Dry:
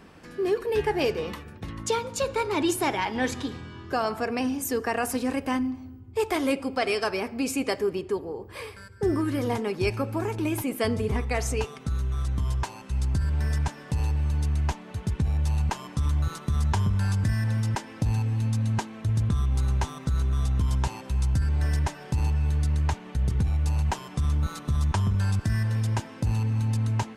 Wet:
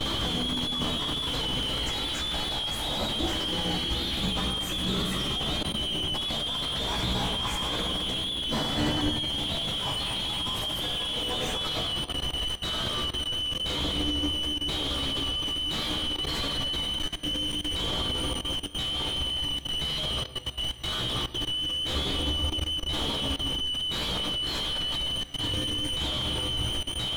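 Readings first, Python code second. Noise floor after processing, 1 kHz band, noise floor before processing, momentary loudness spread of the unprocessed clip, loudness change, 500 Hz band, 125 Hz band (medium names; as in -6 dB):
-35 dBFS, -3.5 dB, -44 dBFS, 6 LU, -0.5 dB, -7.5 dB, -10.5 dB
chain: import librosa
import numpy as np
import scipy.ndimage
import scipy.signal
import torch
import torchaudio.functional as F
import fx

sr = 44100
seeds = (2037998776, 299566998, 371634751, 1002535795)

y = fx.band_shuffle(x, sr, order='2413')
y = fx.over_compress(y, sr, threshold_db=-34.0, ratio=-1.0)
y = fx.dereverb_blind(y, sr, rt60_s=0.73)
y = fx.fuzz(y, sr, gain_db=54.0, gate_db=-48.0)
y = fx.room_shoebox(y, sr, seeds[0], volume_m3=210.0, walls='hard', distance_m=0.65)
y = fx.vibrato(y, sr, rate_hz=4.5, depth_cents=16.0)
y = scipy.signal.sosfilt(scipy.signal.butter(2, 52.0, 'highpass', fs=sr, output='sos'), y)
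y = fx.peak_eq(y, sr, hz=76.0, db=-7.5, octaves=2.6)
y = fx.chorus_voices(y, sr, voices=2, hz=0.33, base_ms=15, depth_ms=1.8, mix_pct=40)
y = fx.level_steps(y, sr, step_db=21)
y = 10.0 ** (-22.5 / 20.0) * np.tanh(y / 10.0 ** (-22.5 / 20.0))
y = fx.riaa(y, sr, side='playback')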